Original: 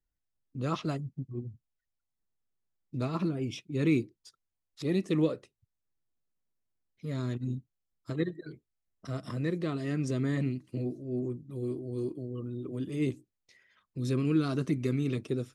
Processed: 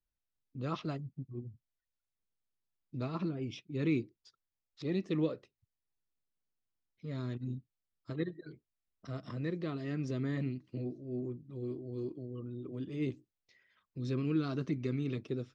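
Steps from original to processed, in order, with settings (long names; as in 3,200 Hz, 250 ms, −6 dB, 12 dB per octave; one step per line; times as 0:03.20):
low-pass filter 5,600 Hz 24 dB per octave
level −5 dB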